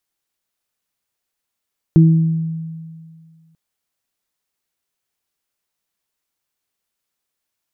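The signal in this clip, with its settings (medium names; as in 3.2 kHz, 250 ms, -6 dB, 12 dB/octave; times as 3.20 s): additive tone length 1.59 s, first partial 162 Hz, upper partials -7 dB, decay 2.04 s, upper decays 0.74 s, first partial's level -5 dB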